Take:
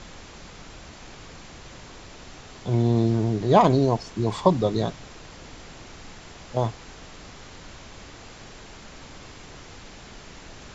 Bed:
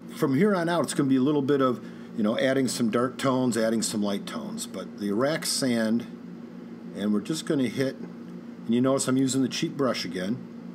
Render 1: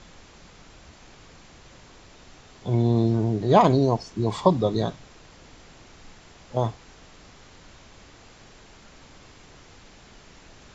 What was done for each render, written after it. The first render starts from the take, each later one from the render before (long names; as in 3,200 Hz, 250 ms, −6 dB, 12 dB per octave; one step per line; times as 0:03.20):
noise reduction from a noise print 6 dB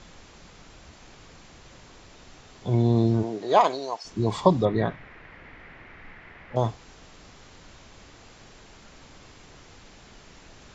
0:03.22–0:04.04: high-pass filter 300 Hz → 1,100 Hz
0:04.65–0:06.56: low-pass with resonance 2,000 Hz, resonance Q 3.7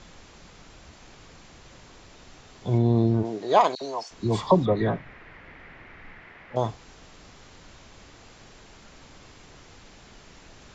0:02.78–0:03.25: high-shelf EQ 4,600 Hz −11.5 dB
0:03.75–0:05.59: all-pass dispersion lows, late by 63 ms, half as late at 1,500 Hz
0:06.25–0:06.69: low-shelf EQ 120 Hz −8.5 dB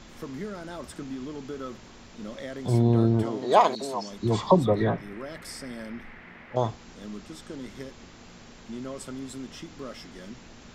mix in bed −14 dB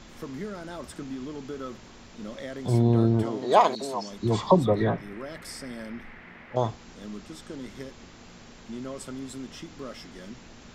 no processing that can be heard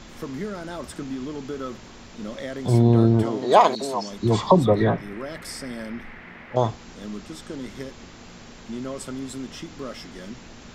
level +4.5 dB
brickwall limiter −3 dBFS, peak gain reduction 2.5 dB